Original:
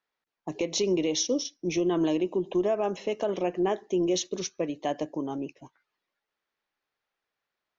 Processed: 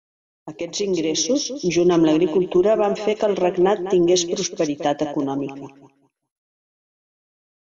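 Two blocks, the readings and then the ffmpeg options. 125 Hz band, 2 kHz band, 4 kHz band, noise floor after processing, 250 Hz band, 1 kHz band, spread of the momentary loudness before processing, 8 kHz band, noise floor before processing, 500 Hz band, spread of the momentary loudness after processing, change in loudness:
+9.0 dB, +8.5 dB, +7.5 dB, under -85 dBFS, +9.0 dB, +9.0 dB, 8 LU, no reading, under -85 dBFS, +8.5 dB, 10 LU, +8.5 dB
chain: -filter_complex "[0:a]dynaudnorm=f=320:g=7:m=2.82,agate=range=0.0224:threshold=0.00708:ratio=3:detection=peak,asplit=2[s0][s1];[s1]aecho=0:1:202|404|606:0.282|0.0564|0.0113[s2];[s0][s2]amix=inputs=2:normalize=0" -ar 44100 -c:a mp2 -b:a 96k

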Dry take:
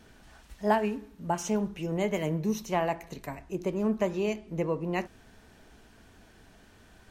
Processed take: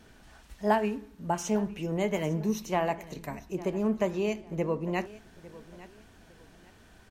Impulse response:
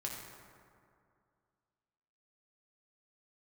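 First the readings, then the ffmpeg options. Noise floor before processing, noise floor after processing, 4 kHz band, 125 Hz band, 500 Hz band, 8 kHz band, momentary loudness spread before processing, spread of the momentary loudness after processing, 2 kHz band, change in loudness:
-57 dBFS, -56 dBFS, 0.0 dB, 0.0 dB, 0.0 dB, 0.0 dB, 9 LU, 21 LU, 0.0 dB, 0.0 dB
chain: -af "aecho=1:1:853|1706:0.112|0.0325"

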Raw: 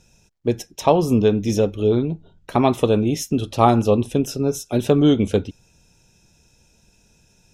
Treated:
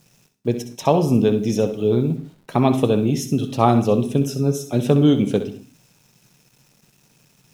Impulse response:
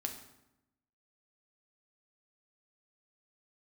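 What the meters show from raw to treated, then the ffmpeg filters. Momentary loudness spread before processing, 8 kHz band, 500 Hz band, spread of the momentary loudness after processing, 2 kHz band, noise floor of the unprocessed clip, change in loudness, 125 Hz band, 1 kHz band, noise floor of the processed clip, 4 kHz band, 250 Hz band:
9 LU, -1.5 dB, -1.0 dB, 9 LU, -1.5 dB, -59 dBFS, 0.0 dB, +2.0 dB, -1.5 dB, -59 dBFS, -1.5 dB, +0.5 dB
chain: -filter_complex "[0:a]acrusher=bits=8:mix=0:aa=0.000001,lowshelf=f=100:t=q:w=3:g=-9,asplit=2[s0][s1];[1:a]atrim=start_sample=2205,afade=t=out:st=0.23:d=0.01,atrim=end_sample=10584,adelay=64[s2];[s1][s2]afir=irnorm=-1:irlink=0,volume=0.335[s3];[s0][s3]amix=inputs=2:normalize=0,volume=0.794"

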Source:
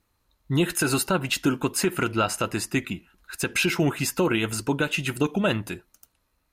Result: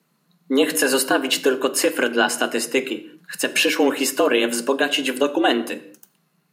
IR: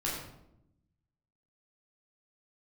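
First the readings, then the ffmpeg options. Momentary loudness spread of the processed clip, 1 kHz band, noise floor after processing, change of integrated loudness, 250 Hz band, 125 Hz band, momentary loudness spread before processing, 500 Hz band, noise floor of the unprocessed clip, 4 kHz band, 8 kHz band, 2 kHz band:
7 LU, +5.5 dB, -67 dBFS, +5.0 dB, +3.0 dB, -18.5 dB, 8 LU, +8.0 dB, -72 dBFS, +8.0 dB, +5.0 dB, +6.0 dB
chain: -filter_complex "[0:a]afreqshift=130,asplit=2[s0][s1];[1:a]atrim=start_sample=2205,afade=t=out:st=0.28:d=0.01,atrim=end_sample=12789[s2];[s1][s2]afir=irnorm=-1:irlink=0,volume=0.168[s3];[s0][s3]amix=inputs=2:normalize=0,volume=1.58"

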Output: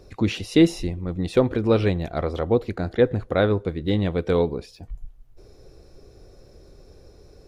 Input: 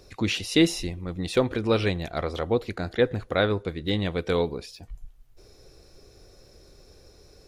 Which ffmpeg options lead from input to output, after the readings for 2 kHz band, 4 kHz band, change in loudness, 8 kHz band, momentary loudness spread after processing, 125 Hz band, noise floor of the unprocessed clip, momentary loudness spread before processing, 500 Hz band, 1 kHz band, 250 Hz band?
-1.5 dB, -4.0 dB, +3.5 dB, no reading, 10 LU, +5.0 dB, -54 dBFS, 10 LU, +4.0 dB, +1.5 dB, +4.5 dB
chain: -af "tiltshelf=f=1300:g=5"

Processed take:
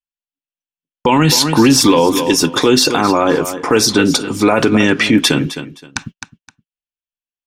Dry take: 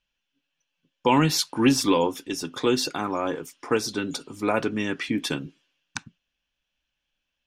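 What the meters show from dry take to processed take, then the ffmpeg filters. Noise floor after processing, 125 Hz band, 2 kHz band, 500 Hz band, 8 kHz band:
under -85 dBFS, +12.0 dB, +13.0 dB, +11.5 dB, +14.5 dB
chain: -af "agate=range=0.00891:threshold=0.00631:ratio=16:detection=peak,aecho=1:1:260|520:0.158|0.0349,alimiter=level_in=9.44:limit=0.891:release=50:level=0:latency=1,volume=0.891"

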